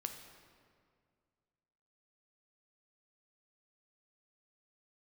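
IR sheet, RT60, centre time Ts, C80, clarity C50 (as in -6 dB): 2.1 s, 34 ms, 8.0 dB, 6.5 dB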